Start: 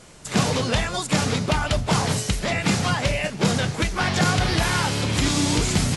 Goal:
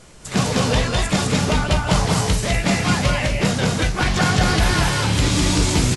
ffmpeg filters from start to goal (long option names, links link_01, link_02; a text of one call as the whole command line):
ffmpeg -i in.wav -filter_complex "[0:a]lowshelf=frequency=61:gain=8.5,asplit=2[link_01][link_02];[link_02]adelay=16,volume=-12dB[link_03];[link_01][link_03]amix=inputs=2:normalize=0,aecho=1:1:204.1|247.8:0.794|0.355" out.wav